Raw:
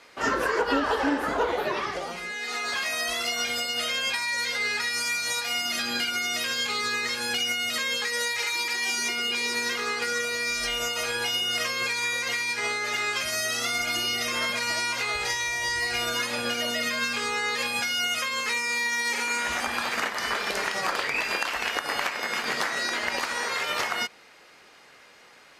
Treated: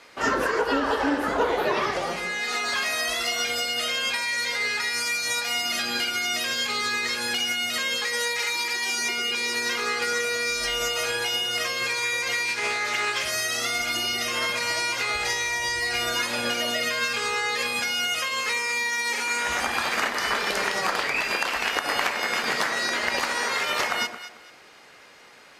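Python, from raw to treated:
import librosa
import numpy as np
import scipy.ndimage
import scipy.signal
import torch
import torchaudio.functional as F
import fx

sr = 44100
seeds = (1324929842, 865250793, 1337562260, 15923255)

p1 = fx.rider(x, sr, range_db=3, speed_s=0.5)
p2 = p1 + fx.echo_alternate(p1, sr, ms=111, hz=930.0, feedback_pct=50, wet_db=-7, dry=0)
p3 = fx.doppler_dist(p2, sr, depth_ms=0.13, at=(12.45, 13.29))
y = p3 * 10.0 ** (1.5 / 20.0)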